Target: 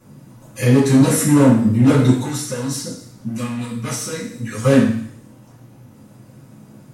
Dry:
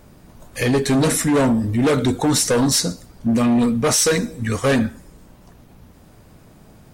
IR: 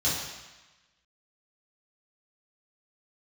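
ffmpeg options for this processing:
-filter_complex "[0:a]asettb=1/sr,asplit=3[s0][s1][s2];[s0]atrim=end=2.114[s3];[s1]atrim=start=2.11:end=4.63,asetpts=PTS-STARTPTS,afade=t=in:d=0.004:c=qsin,afade=t=out:st=2.516:d=0.004:c=qsin,acrossover=split=99|1400[s4][s5][s6];[s4]acompressor=threshold=0.00794:ratio=4[s7];[s5]acompressor=threshold=0.0316:ratio=4[s8];[s6]acompressor=threshold=0.0398:ratio=4[s9];[s7][s8][s9]amix=inputs=3:normalize=0[s10];[s2]atrim=start=4.626[s11];[s3][s10]acrossfade=d=0.004:c1=hsin:c2=qsin[s12];[s12][s11]acrossfade=d=0.004:c1=qsin:c2=hsin[s13];[1:a]atrim=start_sample=2205,asetrate=79380,aresample=44100[s14];[s13][s14]afir=irnorm=-1:irlink=0,volume=0.473"

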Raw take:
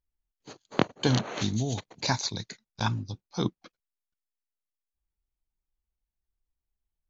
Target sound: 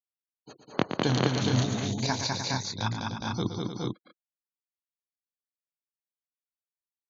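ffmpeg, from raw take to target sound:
-filter_complex "[0:a]afftfilt=real='re*gte(hypot(re,im),0.00562)':imag='im*gte(hypot(re,im),0.00562)':win_size=1024:overlap=0.75,asplit=2[s0][s1];[s1]aecho=0:1:118|202|215|303|414|445:0.376|0.708|0.1|0.355|0.631|0.596[s2];[s0][s2]amix=inputs=2:normalize=0,volume=0.75"

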